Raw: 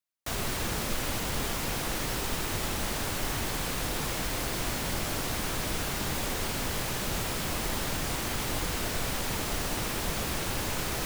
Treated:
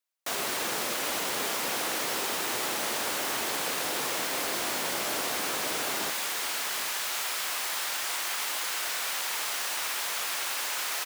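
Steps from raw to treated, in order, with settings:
high-pass filter 380 Hz 12 dB per octave, from 0:06.10 1,000 Hz
single-tap delay 785 ms −11.5 dB
level +3 dB

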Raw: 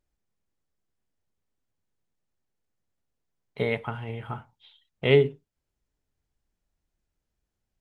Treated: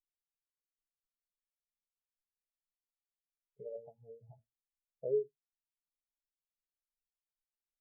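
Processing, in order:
gate on every frequency bin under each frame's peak −20 dB strong
hum removal 115.9 Hz, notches 5
downward compressor 5 to 1, threshold −31 dBFS, peak gain reduction 15 dB
transistor ladder low-pass 1,500 Hz, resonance 70%, from 0:03.64 690 Hz
background noise brown −71 dBFS
every bin expanded away from the loudest bin 2.5 to 1
level +4 dB

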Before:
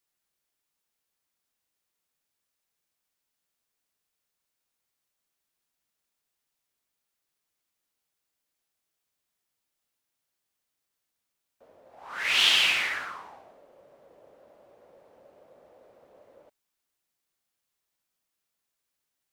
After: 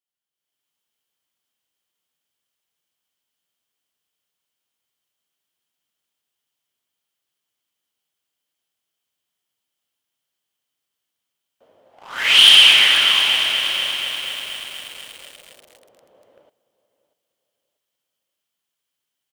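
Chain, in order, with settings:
on a send: repeating echo 639 ms, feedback 29%, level −17 dB
on the sum: automatic gain control gain up to 12.5 dB
high-pass filter 74 Hz
parametric band 3,100 Hz +11.5 dB 0.22 octaves
leveller curve on the samples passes 2
feedback echo at a low word length 241 ms, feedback 80%, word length 5 bits, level −7 dB
level −7.5 dB

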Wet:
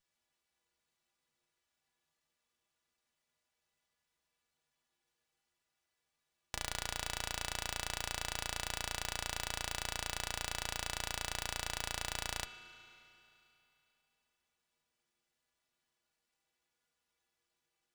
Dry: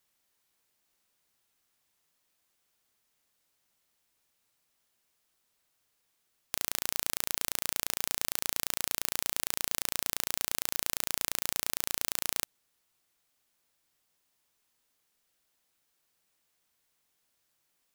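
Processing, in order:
stiff-string resonator 72 Hz, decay 0.32 s, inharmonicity 0.03
spring reverb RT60 3 s, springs 34/44 ms, chirp 30 ms, DRR 0 dB
windowed peak hold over 3 samples

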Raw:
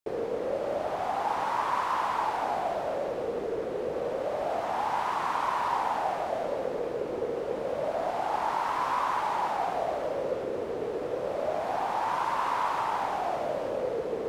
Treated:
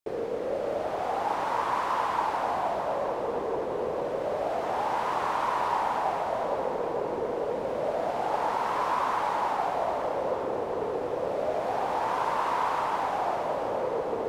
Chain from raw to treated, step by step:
feedback echo with a low-pass in the loop 452 ms, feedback 81%, low-pass 2,000 Hz, level −8 dB

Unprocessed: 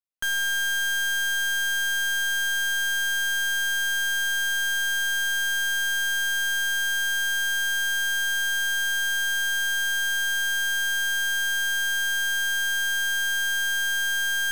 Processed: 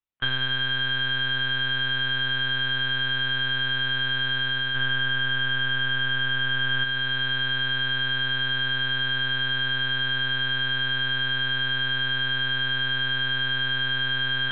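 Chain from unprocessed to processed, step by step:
0:04.75–0:06.84: comb filter 3.2 ms, depth 86%
speech leveller 0.5 s
one-pitch LPC vocoder at 8 kHz 130 Hz

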